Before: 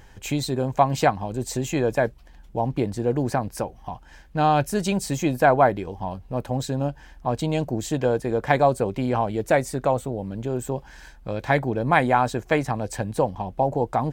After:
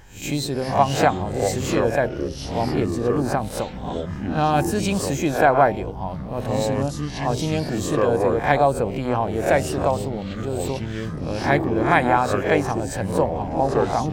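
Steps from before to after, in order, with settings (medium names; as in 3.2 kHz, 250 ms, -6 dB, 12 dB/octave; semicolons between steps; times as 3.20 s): reverse spectral sustain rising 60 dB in 0.37 s; ever faster or slower copies 306 ms, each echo -6 st, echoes 3, each echo -6 dB; de-hum 128.1 Hz, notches 7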